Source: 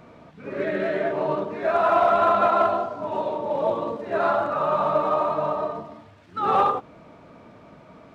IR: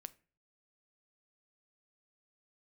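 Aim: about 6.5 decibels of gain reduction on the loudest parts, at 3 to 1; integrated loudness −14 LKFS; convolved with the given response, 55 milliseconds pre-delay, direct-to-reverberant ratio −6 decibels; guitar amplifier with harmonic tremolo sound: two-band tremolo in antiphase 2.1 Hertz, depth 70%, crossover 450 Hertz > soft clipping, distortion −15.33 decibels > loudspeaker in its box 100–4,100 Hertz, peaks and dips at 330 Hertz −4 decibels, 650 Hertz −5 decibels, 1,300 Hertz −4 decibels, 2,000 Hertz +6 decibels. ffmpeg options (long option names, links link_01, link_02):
-filter_complex "[0:a]acompressor=threshold=-24dB:ratio=3,asplit=2[link_01][link_02];[1:a]atrim=start_sample=2205,adelay=55[link_03];[link_02][link_03]afir=irnorm=-1:irlink=0,volume=11.5dB[link_04];[link_01][link_04]amix=inputs=2:normalize=0,acrossover=split=450[link_05][link_06];[link_05]aeval=exprs='val(0)*(1-0.7/2+0.7/2*cos(2*PI*2.1*n/s))':channel_layout=same[link_07];[link_06]aeval=exprs='val(0)*(1-0.7/2-0.7/2*cos(2*PI*2.1*n/s))':channel_layout=same[link_08];[link_07][link_08]amix=inputs=2:normalize=0,asoftclip=threshold=-18.5dB,highpass=100,equalizer=frequency=330:width_type=q:width=4:gain=-4,equalizer=frequency=650:width_type=q:width=4:gain=-5,equalizer=frequency=1300:width_type=q:width=4:gain=-4,equalizer=frequency=2000:width_type=q:width=4:gain=6,lowpass=frequency=4100:width=0.5412,lowpass=frequency=4100:width=1.3066,volume=15dB"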